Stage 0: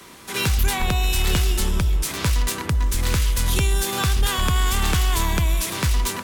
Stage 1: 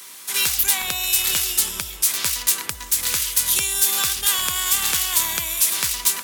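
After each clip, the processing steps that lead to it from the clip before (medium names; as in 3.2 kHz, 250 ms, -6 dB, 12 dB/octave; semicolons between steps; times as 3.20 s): tilt EQ +4.5 dB/octave; trim -4.5 dB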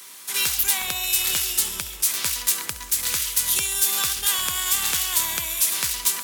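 thinning echo 68 ms, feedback 70%, level -15 dB; trim -2.5 dB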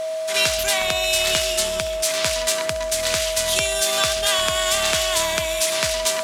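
whistle 640 Hz -30 dBFS; distance through air 71 m; trim +7 dB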